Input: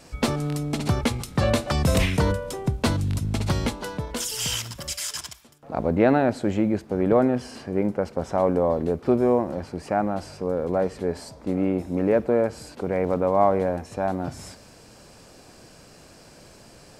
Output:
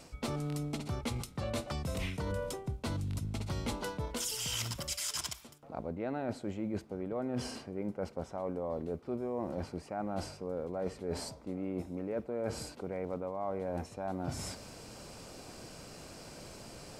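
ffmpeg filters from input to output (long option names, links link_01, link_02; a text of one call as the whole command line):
ffmpeg -i in.wav -af "bandreject=frequency=1700:width=12,areverse,acompressor=threshold=-33dB:ratio=12,areverse" out.wav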